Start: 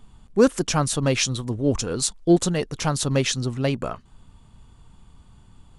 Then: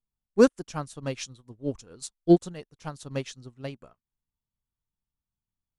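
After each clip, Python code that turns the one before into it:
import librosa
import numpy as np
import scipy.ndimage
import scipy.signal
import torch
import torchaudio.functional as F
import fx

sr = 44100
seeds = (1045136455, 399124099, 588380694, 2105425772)

y = fx.upward_expand(x, sr, threshold_db=-39.0, expansion=2.5)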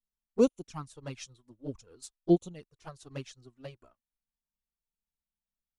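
y = fx.env_flanger(x, sr, rest_ms=4.5, full_db=-22.0)
y = y * 10.0 ** (-5.0 / 20.0)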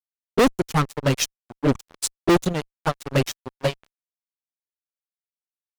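y = fx.fuzz(x, sr, gain_db=39.0, gate_db=-48.0)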